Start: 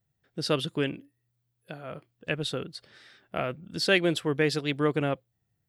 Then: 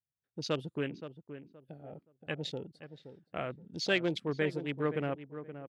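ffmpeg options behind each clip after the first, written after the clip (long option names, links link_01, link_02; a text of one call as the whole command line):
ffmpeg -i in.wav -filter_complex "[0:a]afwtdn=0.0178,asplit=2[link_01][link_02];[link_02]adelay=522,lowpass=frequency=1400:poles=1,volume=-11dB,asplit=2[link_03][link_04];[link_04]adelay=522,lowpass=frequency=1400:poles=1,volume=0.26,asplit=2[link_05][link_06];[link_06]adelay=522,lowpass=frequency=1400:poles=1,volume=0.26[link_07];[link_01][link_03][link_05][link_07]amix=inputs=4:normalize=0,volume=-6.5dB" out.wav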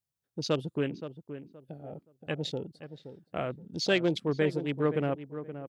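ffmpeg -i in.wav -af "equalizer=frequency=2000:width=0.89:gain=-5,volume=5dB" out.wav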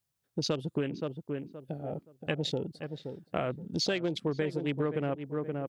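ffmpeg -i in.wav -af "acompressor=threshold=-33dB:ratio=10,volume=6dB" out.wav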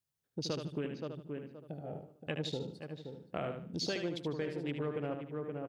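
ffmpeg -i in.wav -af "aecho=1:1:75|150|225|300:0.473|0.147|0.0455|0.0141,volume=-6.5dB" out.wav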